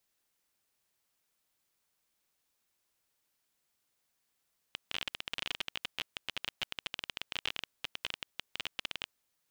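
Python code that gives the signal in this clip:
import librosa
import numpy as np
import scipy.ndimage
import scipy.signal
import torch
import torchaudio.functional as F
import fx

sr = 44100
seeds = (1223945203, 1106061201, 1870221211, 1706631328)

y = fx.geiger_clicks(sr, seeds[0], length_s=4.34, per_s=22.0, level_db=-18.0)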